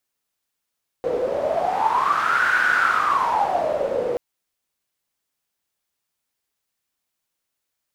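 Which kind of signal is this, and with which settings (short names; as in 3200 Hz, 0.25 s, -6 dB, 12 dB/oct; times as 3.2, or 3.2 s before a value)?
wind-like swept noise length 3.13 s, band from 490 Hz, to 1500 Hz, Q 12, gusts 1, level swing 4 dB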